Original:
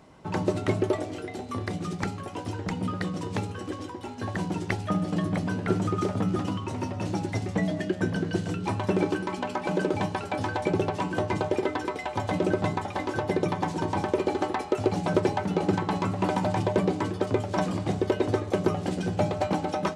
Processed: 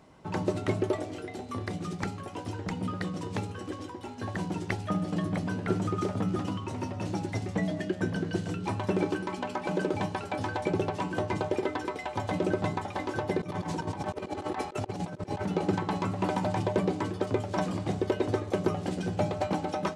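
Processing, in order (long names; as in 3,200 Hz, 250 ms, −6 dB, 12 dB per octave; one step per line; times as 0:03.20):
0:13.39–0:15.46: compressor whose output falls as the input rises −31 dBFS, ratio −0.5
level −3 dB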